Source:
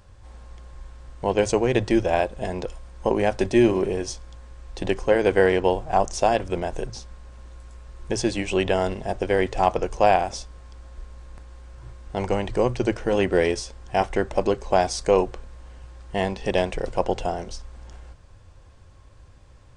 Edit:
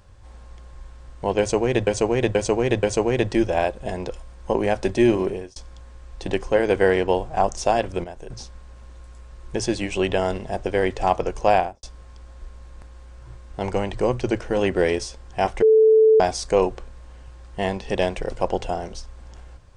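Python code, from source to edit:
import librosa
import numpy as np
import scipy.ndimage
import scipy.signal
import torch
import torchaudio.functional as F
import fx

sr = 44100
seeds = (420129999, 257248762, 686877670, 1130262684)

y = fx.studio_fade_out(x, sr, start_s=10.11, length_s=0.28)
y = fx.edit(y, sr, fx.repeat(start_s=1.39, length_s=0.48, count=4),
    fx.fade_out_span(start_s=3.8, length_s=0.32),
    fx.clip_gain(start_s=6.6, length_s=0.26, db=-9.0),
    fx.bleep(start_s=14.18, length_s=0.58, hz=439.0, db=-10.5), tone=tone)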